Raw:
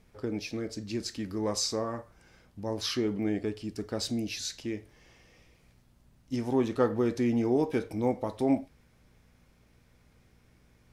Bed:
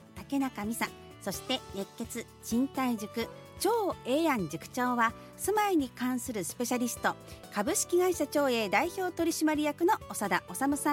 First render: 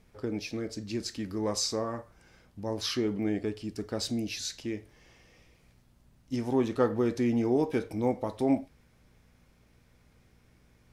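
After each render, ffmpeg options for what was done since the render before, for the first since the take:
-af anull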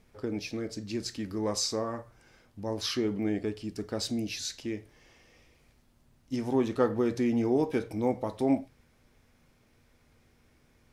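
-af "bandreject=f=60:t=h:w=4,bandreject=f=120:t=h:w=4,bandreject=f=180:t=h:w=4"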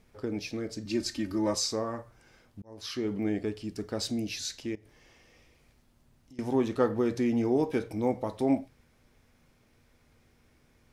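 -filter_complex "[0:a]asettb=1/sr,asplit=3[s0][s1][s2];[s0]atrim=end=0.854[s3];[s1]atrim=start=0.85:end=1.55,asetpts=PTS-STARTPTS,afade=t=in:d=0.004:c=qsin,afade=t=out:st=0.696:d=0.004:c=qsin,aecho=1:1:3.3:0.98,atrim=end_sample=30870[s4];[s2]atrim=start=1.546[s5];[s3][s4]acrossfade=d=0.004:c1=hsin:c2=qsin[s6];[s6][s5]acrossfade=d=0.004:c1=qsin:c2=hsin,asettb=1/sr,asplit=3[s7][s8][s9];[s7]atrim=end=4.754[s10];[s8]atrim=start=4.75:end=6.39,asetpts=PTS-STARTPTS,afade=t=in:d=0.004:c=qsin,afade=t=out:st=1.636:d=0.004:c=qsin,acompressor=threshold=0.00316:ratio=10:attack=3.2:release=140:knee=1:detection=peak[s11];[s9]atrim=start=6.386[s12];[s10][s11]acrossfade=d=0.004:c1=hsin:c2=qsin[s13];[s13][s12]acrossfade=d=0.004:c1=qsin:c2=hsin,asplit=2[s14][s15];[s14]atrim=end=2.62,asetpts=PTS-STARTPTS,afade=t=out:st=2.616:d=0.004:c=hsin[s16];[s15]atrim=start=2.62,asetpts=PTS-STARTPTS,afade=t=in:d=0.55[s17];[s16][s17]concat=n=2:v=0:a=1"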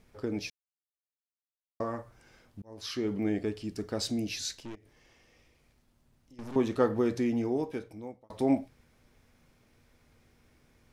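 -filter_complex "[0:a]asettb=1/sr,asplit=3[s0][s1][s2];[s0]atrim=end=4.534[s3];[s1]atrim=start=4.53:end=6.56,asetpts=PTS-STARTPTS,afade=t=in:d=0.004:c=qsin,afade=t=out:st=2.026:d=0.004:c=qsin,aeval=exprs='(tanh(89.1*val(0)+0.65)-tanh(0.65))/89.1':c=same[s4];[s2]atrim=start=6.556[s5];[s3][s4]acrossfade=d=0.004:c1=hsin:c2=qsin[s6];[s6][s5]acrossfade=d=0.004:c1=qsin:c2=hsin,asplit=4[s7][s8][s9][s10];[s7]atrim=end=0.5,asetpts=PTS-STARTPTS,afade=t=out:st=0.496:d=0.004:c=hsin[s11];[s8]atrim=start=0.5:end=1.8,asetpts=PTS-STARTPTS,volume=0[s12];[s9]atrim=start=1.8:end=8.3,asetpts=PTS-STARTPTS,afade=t=in:d=0.004:c=hsin,afade=t=out:st=5.26:d=1.24[s13];[s10]atrim=start=8.3,asetpts=PTS-STARTPTS,afade=t=in:d=0.004:c=hsin[s14];[s11][s12][s13][s14]concat=n=4:v=0:a=1"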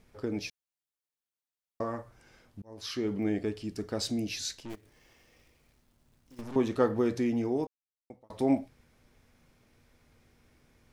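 -filter_complex "[0:a]asplit=3[s0][s1][s2];[s0]afade=t=out:st=4.69:d=0.02[s3];[s1]acrusher=bits=2:mode=log:mix=0:aa=0.000001,afade=t=in:st=4.69:d=0.02,afade=t=out:st=6.4:d=0.02[s4];[s2]afade=t=in:st=6.4:d=0.02[s5];[s3][s4][s5]amix=inputs=3:normalize=0,asplit=3[s6][s7][s8];[s6]atrim=end=7.67,asetpts=PTS-STARTPTS,afade=t=out:st=7.666:d=0.004:c=hsin[s9];[s7]atrim=start=7.67:end=8.1,asetpts=PTS-STARTPTS,volume=0[s10];[s8]atrim=start=8.1,asetpts=PTS-STARTPTS,afade=t=in:d=0.004:c=hsin[s11];[s9][s10][s11]concat=n=3:v=0:a=1"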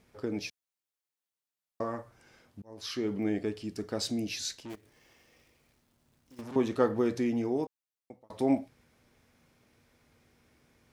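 -af "highpass=f=100:p=1"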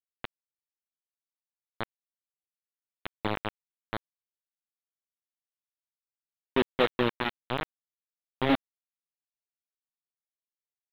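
-af "aresample=8000,acrusher=bits=3:mix=0:aa=0.000001,aresample=44100,aeval=exprs='sgn(val(0))*max(abs(val(0))-0.00316,0)':c=same"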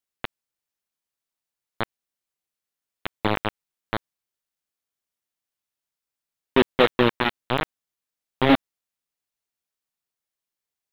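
-af "volume=2.37,alimiter=limit=0.708:level=0:latency=1"

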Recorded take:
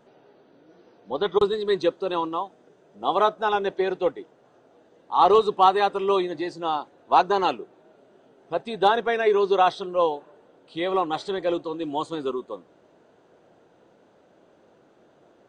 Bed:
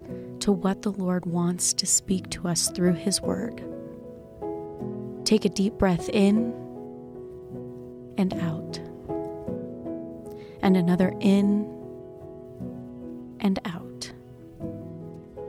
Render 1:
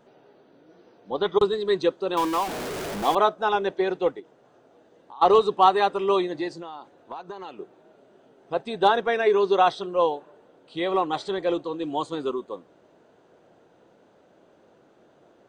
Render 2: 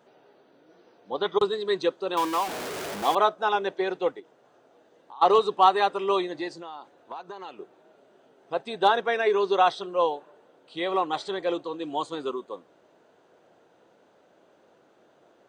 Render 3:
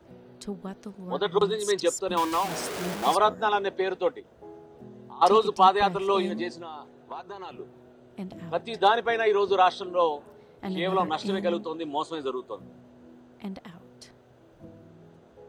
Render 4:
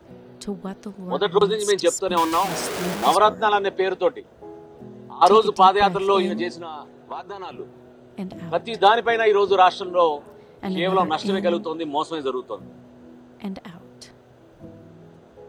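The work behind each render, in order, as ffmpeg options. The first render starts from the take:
-filter_complex "[0:a]asettb=1/sr,asplit=3[s0][s1][s2];[s0]atrim=end=2.174[s3];[s1]atrim=start=2.17:end=3.15,asetpts=PTS-STARTPTS,afade=t=in:d=0.004:c=qsin,afade=t=out:st=0.976:d=0.004:c=qsin,aeval=exprs='val(0)+0.5*0.0501*sgn(val(0))':c=same[s4];[s2]atrim=start=3.146[s5];[s3][s4]acrossfade=d=0.004:c1=hsin:c2=qsin[s6];[s6][s5]acrossfade=d=0.004:c1=qsin:c2=hsin,asplit=3[s7][s8][s9];[s7]afade=t=out:st=4.19:d=0.02[s10];[s8]acompressor=threshold=0.00891:ratio=6:attack=3.2:release=140:knee=1:detection=peak,afade=t=in:st=4.19:d=0.02,afade=t=out:st=5.21:d=0.02[s11];[s9]afade=t=in:st=5.21:d=0.02[s12];[s10][s11][s12]amix=inputs=3:normalize=0,asettb=1/sr,asplit=3[s13][s14][s15];[s13]atrim=end=6.484[s16];[s14]atrim=start=6.48:end=7.6,asetpts=PTS-STARTPTS,afade=t=in:d=0.004:c=qsin,afade=t=out:st=1.116:d=0.004:c=qsin,acompressor=threshold=0.0224:ratio=12:attack=3.2:release=140:knee=1:detection=peak[s17];[s15]atrim=start=7.596[s18];[s16][s17]acrossfade=d=0.004:c1=hsin:c2=qsin[s19];[s19][s18]acrossfade=d=0.004:c1=qsin:c2=hsin"
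-af "highpass=50,lowshelf=f=330:g=-8"
-filter_complex "[1:a]volume=0.224[s0];[0:a][s0]amix=inputs=2:normalize=0"
-af "volume=1.88,alimiter=limit=0.708:level=0:latency=1"

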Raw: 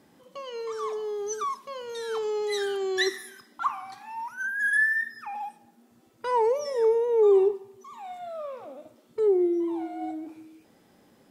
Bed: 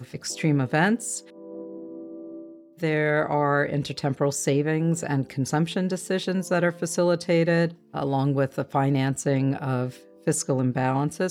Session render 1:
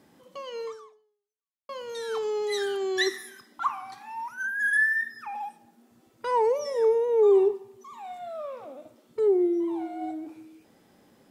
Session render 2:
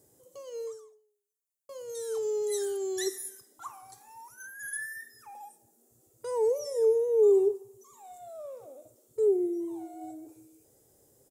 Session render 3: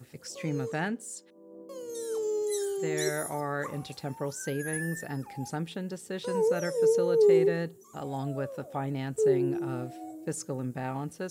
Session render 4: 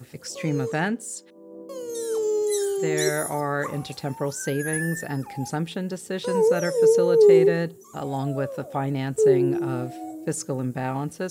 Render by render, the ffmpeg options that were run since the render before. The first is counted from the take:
-filter_complex "[0:a]asplit=2[s0][s1];[s0]atrim=end=1.69,asetpts=PTS-STARTPTS,afade=t=out:st=0.66:d=1.03:c=exp[s2];[s1]atrim=start=1.69,asetpts=PTS-STARTPTS,afade=t=in:d=0.004:c=hsin[s3];[s2][s3]concat=n=2:v=0:a=1"
-af "firequalizer=gain_entry='entry(130,0);entry(190,-18);entry(420,-1);entry(960,-15);entry(2500,-17);entry(4600,-8);entry(7100,8)':delay=0.05:min_phase=1"
-filter_complex "[1:a]volume=0.299[s0];[0:a][s0]amix=inputs=2:normalize=0"
-af "volume=2.11"

